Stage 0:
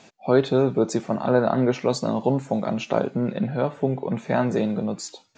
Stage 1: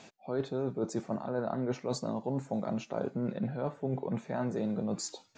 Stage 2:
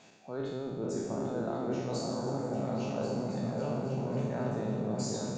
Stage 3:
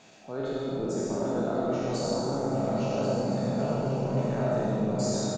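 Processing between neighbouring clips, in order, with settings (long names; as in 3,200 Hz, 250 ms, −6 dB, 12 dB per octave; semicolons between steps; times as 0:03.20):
dynamic equaliser 2,900 Hz, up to −7 dB, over −48 dBFS, Q 1.3; reversed playback; downward compressor 6 to 1, threshold −28 dBFS, peak gain reduction 14.5 dB; reversed playback; level −2 dB
peak hold with a decay on every bin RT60 1.46 s; echo whose low-pass opens from repeat to repeat 272 ms, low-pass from 200 Hz, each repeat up 2 octaves, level 0 dB; level −6 dB
on a send at −1.5 dB: double-tracking delay 29 ms −2.5 dB + convolution reverb RT60 0.75 s, pre-delay 35 ms; on the sum: level +2.5 dB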